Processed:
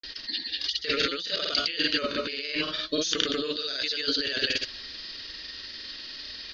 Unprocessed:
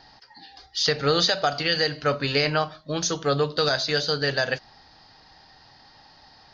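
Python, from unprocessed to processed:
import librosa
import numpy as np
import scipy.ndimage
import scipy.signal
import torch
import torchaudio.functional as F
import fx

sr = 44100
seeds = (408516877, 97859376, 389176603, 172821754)

y = fx.peak_eq(x, sr, hz=3200.0, db=12.0, octaves=1.4)
y = fx.notch(y, sr, hz=760.0, q=15.0)
y = fx.over_compress(y, sr, threshold_db=-28.0, ratio=-1.0)
y = fx.fixed_phaser(y, sr, hz=340.0, stages=4)
y = fx.granulator(y, sr, seeds[0], grain_ms=100.0, per_s=20.0, spray_ms=100.0, spread_st=0)
y = y * librosa.db_to_amplitude(2.0)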